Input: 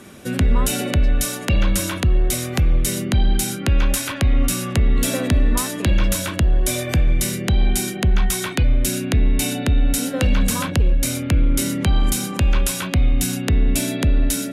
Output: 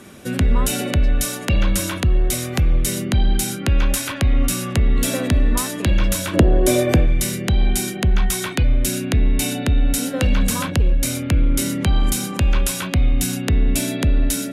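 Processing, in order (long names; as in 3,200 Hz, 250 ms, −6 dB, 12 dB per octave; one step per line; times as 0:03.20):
0:06.33–0:07.05: parametric band 410 Hz +15 dB → +9 dB 2.4 octaves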